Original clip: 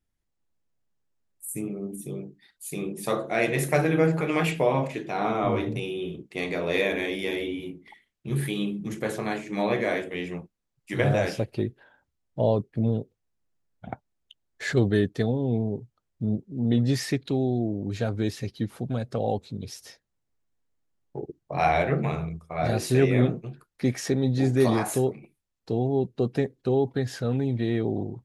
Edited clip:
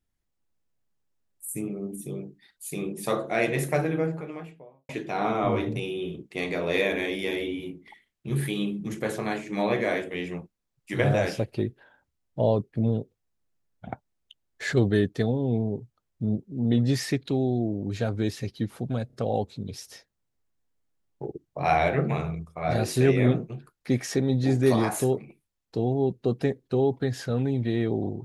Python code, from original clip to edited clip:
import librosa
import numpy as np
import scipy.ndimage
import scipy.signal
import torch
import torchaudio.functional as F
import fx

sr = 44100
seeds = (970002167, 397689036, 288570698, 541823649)

y = fx.studio_fade_out(x, sr, start_s=3.26, length_s=1.63)
y = fx.edit(y, sr, fx.stutter(start_s=19.07, slice_s=0.03, count=3), tone=tone)